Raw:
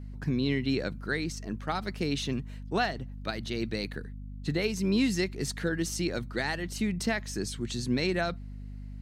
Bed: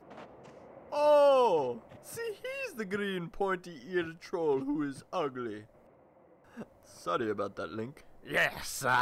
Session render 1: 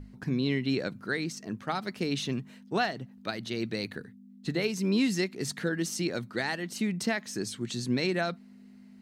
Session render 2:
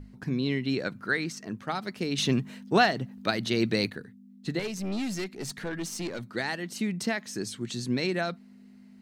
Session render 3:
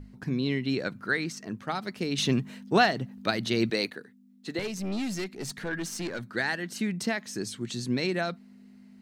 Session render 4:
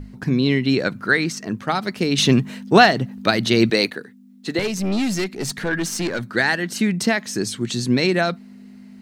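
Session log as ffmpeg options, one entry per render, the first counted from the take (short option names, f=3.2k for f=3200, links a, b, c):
-af "bandreject=f=50:t=h:w=6,bandreject=f=100:t=h:w=6,bandreject=f=150:t=h:w=6"
-filter_complex "[0:a]asettb=1/sr,asplit=3[a][b][c];[a]atrim=end=0.854[d];[b]atrim=start=0.85:end=1.49,asetpts=PTS-STARTPTS,afade=t=in:d=0.004:c=qsin,afade=t=out:st=0.636:d=0.004:c=qsin,equalizer=f=1.5k:w=0.88:g=5.5[e];[c]atrim=start=1.486[f];[d][e]acrossfade=d=0.004:c1=hsin:c2=qsin[g];[g][f]acrossfade=d=0.004:c1=qsin:c2=hsin,asettb=1/sr,asplit=3[h][i][j];[h]atrim=end=2.184[k];[i]atrim=start=2.18:end=3.9,asetpts=PTS-STARTPTS,afade=t=in:d=0.004:c=qsin,afade=t=out:st=1.716:d=0.004:c=qsin,acontrast=78[l];[j]atrim=start=3.896[m];[k][l]acrossfade=d=0.004:c1=hsin:c2=qsin[n];[n][m]acrossfade=d=0.004:c1=qsin:c2=hsin,asettb=1/sr,asplit=3[o][p][q];[o]atrim=end=4.594[r];[p]atrim=start=4.59:end=6.29,asetpts=PTS-STARTPTS,afade=t=in:d=0.004:c=qsin,afade=t=out:st=1.696:d=0.004:c=qsin,aeval=exprs='(tanh(25.1*val(0)+0.3)-tanh(0.3))/25.1':c=same[s];[q]atrim=start=6.286[t];[r][s]acrossfade=d=0.004:c1=hsin:c2=qsin[u];[u][t]acrossfade=d=0.004:c1=qsin:c2=hsin"
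-filter_complex "[0:a]asettb=1/sr,asplit=3[a][b][c];[a]atrim=end=3.704[d];[b]atrim=start=3.7:end=4.59,asetpts=PTS-STARTPTS,afade=t=in:d=0.004:c=qsin,afade=t=out:st=0.886:d=0.004:c=qsin,highpass=290[e];[c]atrim=start=4.586[f];[d][e]acrossfade=d=0.004:c1=hsin:c2=qsin[g];[g][f]acrossfade=d=0.004:c1=qsin:c2=hsin,asettb=1/sr,asplit=3[h][i][j];[h]atrim=end=5.684[k];[i]atrim=start=5.68:end=6.93,asetpts=PTS-STARTPTS,afade=t=in:d=0.004:c=qsin,afade=t=out:st=1.246:d=0.004:c=qsin,equalizer=f=1.6k:t=o:w=0.34:g=7.5[l];[j]atrim=start=6.926[m];[k][l]acrossfade=d=0.004:c1=hsin:c2=qsin[n];[n][m]acrossfade=d=0.004:c1=qsin:c2=hsin"
-af "volume=10dB,alimiter=limit=-1dB:level=0:latency=1"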